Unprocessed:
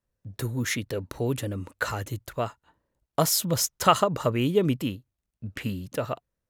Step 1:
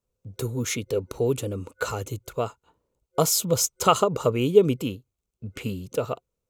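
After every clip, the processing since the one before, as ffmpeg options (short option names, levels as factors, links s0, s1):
-af "superequalizer=7b=2.24:11b=0.316:15b=1.58"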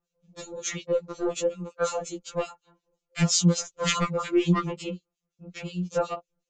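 -filter_complex "[0:a]aresample=16000,aeval=exprs='0.631*sin(PI/2*3.55*val(0)/0.631)':c=same,aresample=44100,acrossover=split=1900[s0][s1];[s0]aeval=exprs='val(0)*(1-1/2+1/2*cos(2*PI*5.5*n/s))':c=same[s2];[s1]aeval=exprs='val(0)*(1-1/2-1/2*cos(2*PI*5.5*n/s))':c=same[s3];[s2][s3]amix=inputs=2:normalize=0,afftfilt=real='re*2.83*eq(mod(b,8),0)':imag='im*2.83*eq(mod(b,8),0)':win_size=2048:overlap=0.75,volume=0.501"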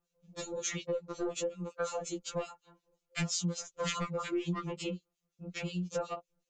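-af "acompressor=threshold=0.0224:ratio=4"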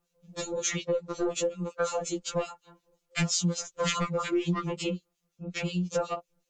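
-af "volume=2" -ar 48000 -c:a wmav2 -b:a 128k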